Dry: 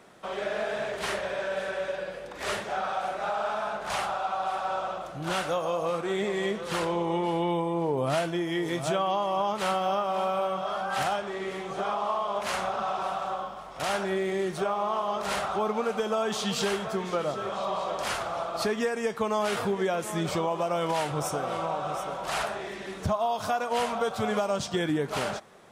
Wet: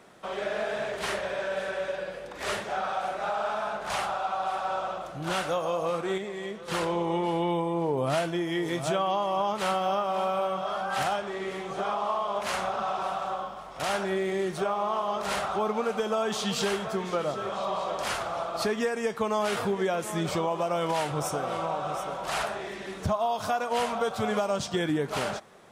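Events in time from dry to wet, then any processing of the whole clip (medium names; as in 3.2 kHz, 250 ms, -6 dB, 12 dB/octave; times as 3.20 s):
6.18–6.68 s: gain -7 dB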